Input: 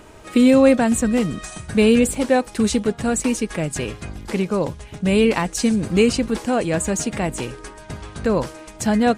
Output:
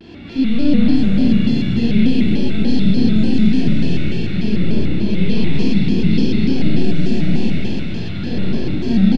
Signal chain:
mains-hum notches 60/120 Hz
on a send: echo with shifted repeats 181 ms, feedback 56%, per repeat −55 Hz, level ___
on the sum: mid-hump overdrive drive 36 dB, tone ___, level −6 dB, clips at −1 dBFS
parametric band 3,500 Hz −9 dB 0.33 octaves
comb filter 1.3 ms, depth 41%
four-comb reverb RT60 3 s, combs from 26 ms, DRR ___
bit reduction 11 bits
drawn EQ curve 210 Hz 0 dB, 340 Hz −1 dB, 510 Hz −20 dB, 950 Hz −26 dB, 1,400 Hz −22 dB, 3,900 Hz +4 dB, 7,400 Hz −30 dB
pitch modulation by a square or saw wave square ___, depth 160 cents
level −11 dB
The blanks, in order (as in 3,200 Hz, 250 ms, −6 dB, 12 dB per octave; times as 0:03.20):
−11.5 dB, 1,100 Hz, −8 dB, 3.4 Hz